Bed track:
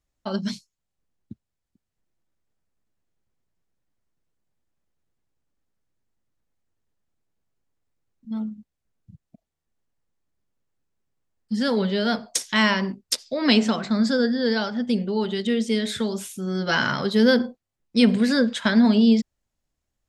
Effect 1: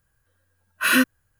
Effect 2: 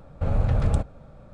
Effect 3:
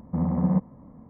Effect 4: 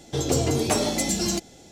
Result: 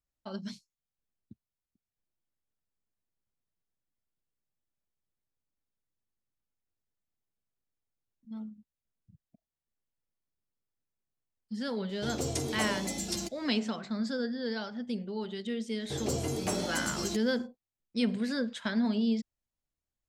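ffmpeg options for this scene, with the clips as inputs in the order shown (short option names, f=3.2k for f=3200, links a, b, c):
-filter_complex "[4:a]asplit=2[a][b];[0:a]volume=-12dB[c];[b]bandreject=f=3.7k:w=20[d];[a]atrim=end=1.71,asetpts=PTS-STARTPTS,volume=-11dB,afade=t=in:d=0.004:c=hsin,afade=t=out:st=1.706:d=0.004:c=hsin,adelay=11890[e];[d]atrim=end=1.71,asetpts=PTS-STARTPTS,volume=-10dB,afade=t=in:d=0.1,afade=t=out:st=1.61:d=0.1,adelay=15770[f];[c][e][f]amix=inputs=3:normalize=0"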